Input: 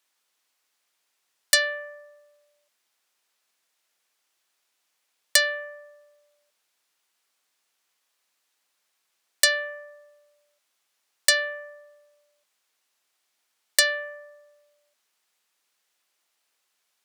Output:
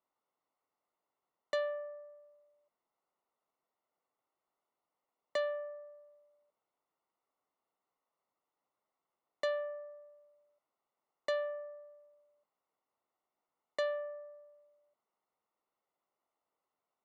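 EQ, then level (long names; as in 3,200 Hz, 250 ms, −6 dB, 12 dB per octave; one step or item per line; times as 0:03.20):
Savitzky-Golay smoothing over 65 samples
high-frequency loss of the air 90 metres
−2.0 dB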